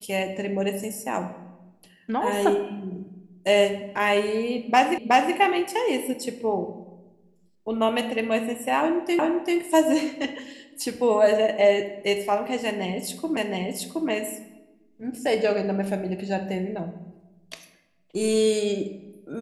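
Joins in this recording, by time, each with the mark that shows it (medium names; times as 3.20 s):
4.98 s: repeat of the last 0.37 s
9.19 s: repeat of the last 0.39 s
13.37 s: repeat of the last 0.72 s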